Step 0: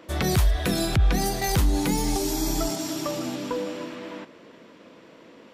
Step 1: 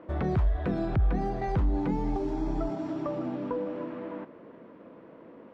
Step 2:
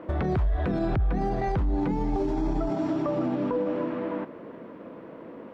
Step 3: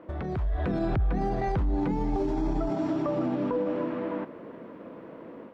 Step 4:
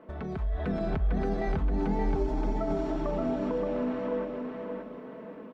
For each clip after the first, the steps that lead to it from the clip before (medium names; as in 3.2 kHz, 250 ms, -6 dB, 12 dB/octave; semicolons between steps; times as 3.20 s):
low-pass 1.2 kHz 12 dB/octave; in parallel at +1.5 dB: compression, threshold -32 dBFS, peak gain reduction 14.5 dB; on the sum: trim -6.5 dB
peak limiter -26 dBFS, peak gain reduction 8.5 dB; trim +7 dB
level rider gain up to 6 dB; trim -7 dB
comb 4.6 ms, depth 58%; feedback delay 575 ms, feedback 33%, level -4.5 dB; trim -3.5 dB